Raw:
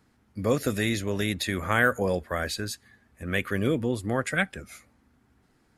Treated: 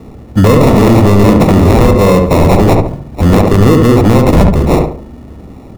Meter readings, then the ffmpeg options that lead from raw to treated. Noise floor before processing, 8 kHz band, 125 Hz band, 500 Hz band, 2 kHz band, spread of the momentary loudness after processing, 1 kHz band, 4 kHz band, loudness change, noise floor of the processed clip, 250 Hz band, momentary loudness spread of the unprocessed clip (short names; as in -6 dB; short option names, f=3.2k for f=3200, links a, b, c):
-65 dBFS, +11.5 dB, +24.5 dB, +20.0 dB, +5.5 dB, 6 LU, +19.5 dB, +11.0 dB, +19.5 dB, -33 dBFS, +22.0 dB, 15 LU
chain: -filter_complex "[0:a]acrossover=split=1500[a][b];[b]aemphasis=mode=production:type=bsi[c];[a][c]amix=inputs=2:normalize=0,acrusher=samples=28:mix=1:aa=0.000001,acompressor=threshold=-31dB:ratio=4,tiltshelf=f=790:g=6.5,asplit=2[d][e];[e]adelay=70,lowpass=f=1.7k:p=1,volume=-3.5dB,asplit=2[f][g];[g]adelay=70,lowpass=f=1.7k:p=1,volume=0.37,asplit=2[h][i];[i]adelay=70,lowpass=f=1.7k:p=1,volume=0.37,asplit=2[j][k];[k]adelay=70,lowpass=f=1.7k:p=1,volume=0.37,asplit=2[l][m];[m]adelay=70,lowpass=f=1.7k:p=1,volume=0.37[n];[f][h][j][l][n]amix=inputs=5:normalize=0[o];[d][o]amix=inputs=2:normalize=0,apsyclip=28dB,volume=-1.5dB"